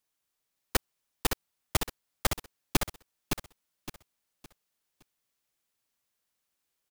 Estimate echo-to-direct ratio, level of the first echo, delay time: -5.0 dB, -5.5 dB, 564 ms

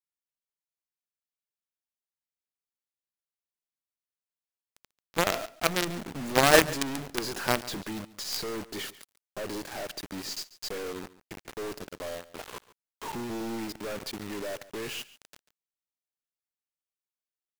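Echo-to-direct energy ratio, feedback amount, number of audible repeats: -18.5 dB, no regular repeats, 1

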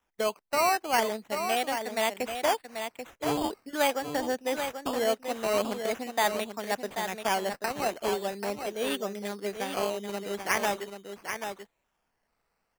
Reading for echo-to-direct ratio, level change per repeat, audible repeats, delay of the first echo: -7.5 dB, no regular repeats, 1, 786 ms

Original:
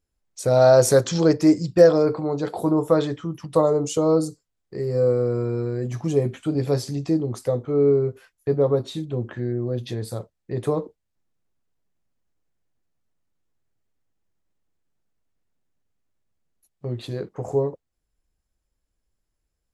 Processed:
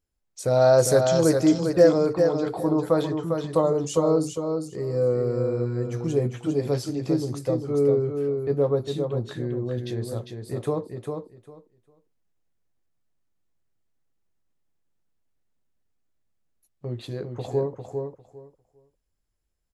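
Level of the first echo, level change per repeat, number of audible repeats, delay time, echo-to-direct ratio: -5.5 dB, -15.0 dB, 2, 401 ms, -5.5 dB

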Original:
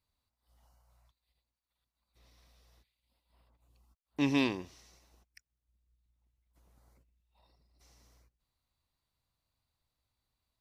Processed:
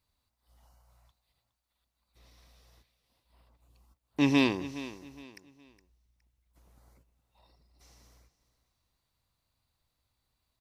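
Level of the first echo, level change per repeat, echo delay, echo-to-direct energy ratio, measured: -15.5 dB, -10.0 dB, 415 ms, -15.0 dB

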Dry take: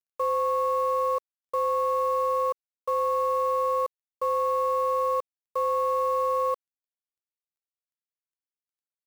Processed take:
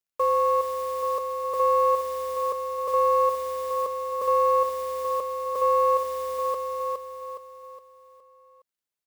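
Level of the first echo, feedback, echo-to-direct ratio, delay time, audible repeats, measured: -4.0 dB, 43%, -3.0 dB, 415 ms, 5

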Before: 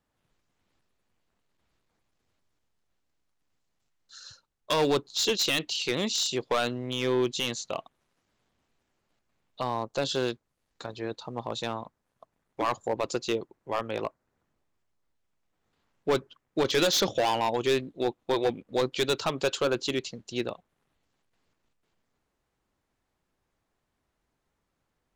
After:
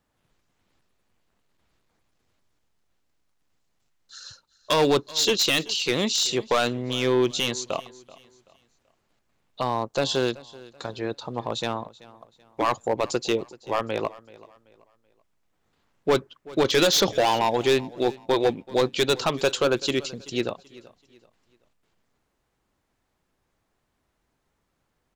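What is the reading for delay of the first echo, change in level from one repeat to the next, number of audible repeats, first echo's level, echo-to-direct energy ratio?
382 ms, -9.5 dB, 2, -20.5 dB, -20.0 dB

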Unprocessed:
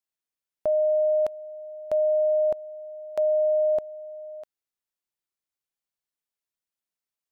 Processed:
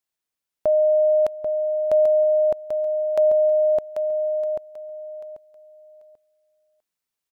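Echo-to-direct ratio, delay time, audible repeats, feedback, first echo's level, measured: -6.5 dB, 789 ms, 3, 22%, -6.5 dB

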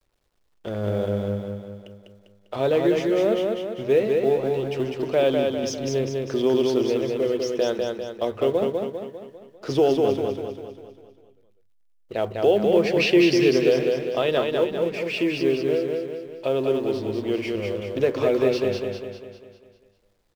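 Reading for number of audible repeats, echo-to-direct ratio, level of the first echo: 6, -2.5 dB, -3.5 dB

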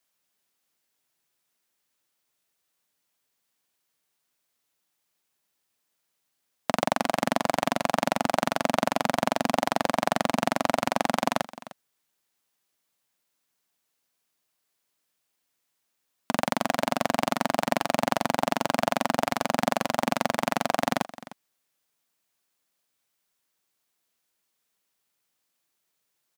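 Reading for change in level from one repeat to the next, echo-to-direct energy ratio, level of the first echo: no regular repeats, -17.5 dB, -17.5 dB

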